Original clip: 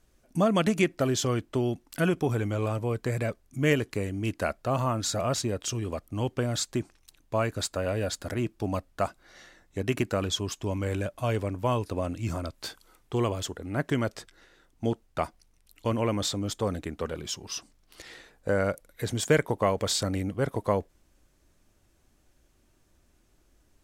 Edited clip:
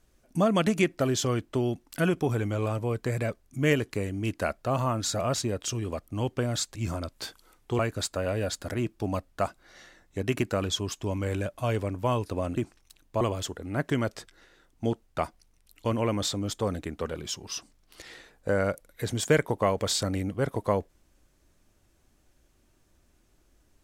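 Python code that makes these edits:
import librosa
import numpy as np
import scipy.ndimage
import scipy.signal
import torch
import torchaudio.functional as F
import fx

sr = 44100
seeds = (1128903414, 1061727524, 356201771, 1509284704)

y = fx.edit(x, sr, fx.swap(start_s=6.75, length_s=0.64, other_s=12.17, other_length_s=1.04), tone=tone)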